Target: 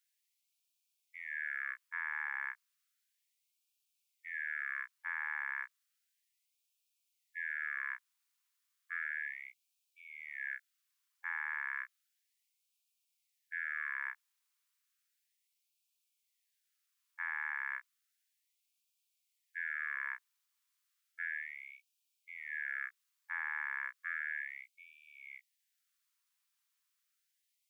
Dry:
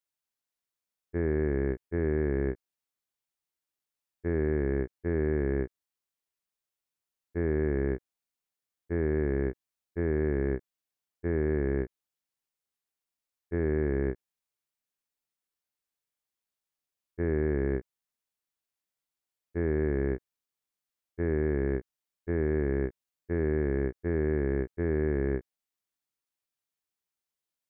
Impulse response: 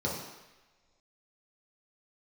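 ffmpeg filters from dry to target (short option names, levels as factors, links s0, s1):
-af "equalizer=f=870:w=5.1:g=-7,afftfilt=real='re*gte(b*sr/1024,800*pow(2300/800,0.5+0.5*sin(2*PI*0.33*pts/sr)))':imag='im*gte(b*sr/1024,800*pow(2300/800,0.5+0.5*sin(2*PI*0.33*pts/sr)))':win_size=1024:overlap=0.75,volume=2.37"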